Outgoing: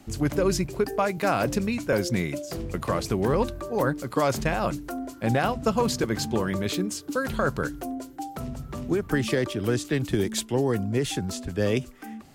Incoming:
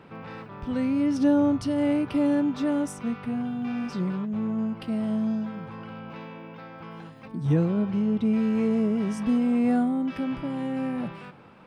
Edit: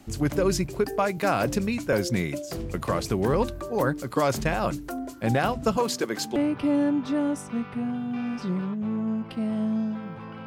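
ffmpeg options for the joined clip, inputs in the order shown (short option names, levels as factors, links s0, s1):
-filter_complex "[0:a]asettb=1/sr,asplit=3[s0][s1][s2];[s0]atrim=end=5.774[s3];[s1]atrim=start=5.77:end=6.36,asetpts=PTS-STARTPTS,afade=t=in:d=0.004:c=qsin,afade=t=out:st=0.586:d=0.004:c=qsin,highpass=280[s4];[s2]atrim=start=6.356[s5];[s3][s4]acrossfade=d=0.004:c1=hsin:c2=qsin[s6];[s6][s5]acrossfade=d=0.004:c1=qsin:c2=hsin,apad=whole_dur=10.46,atrim=end=10.46,atrim=end=6.362[s7];[1:a]atrim=start=1.868:end=5.97[s8];[s7][s8]acrossfade=d=0.004:c1=hsin:c2=hsin"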